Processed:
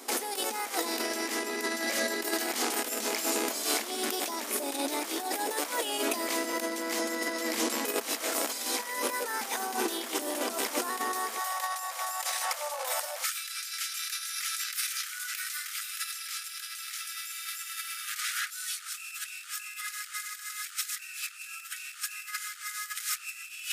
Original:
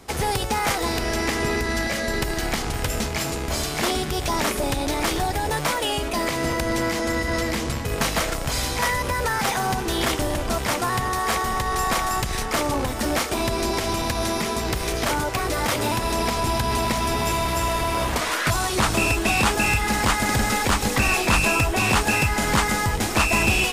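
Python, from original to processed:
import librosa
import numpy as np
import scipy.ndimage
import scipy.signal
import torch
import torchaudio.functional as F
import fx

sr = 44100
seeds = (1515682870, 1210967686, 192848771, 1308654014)

y = fx.high_shelf(x, sr, hz=6700.0, db=11.0)
y = fx.over_compress(y, sr, threshold_db=-26.0, ratio=-0.5)
y = fx.brickwall_highpass(y, sr, low_hz=fx.steps((0.0, 220.0), (11.38, 490.0), (13.23, 1200.0)))
y = y * 10.0 ** (-5.0 / 20.0)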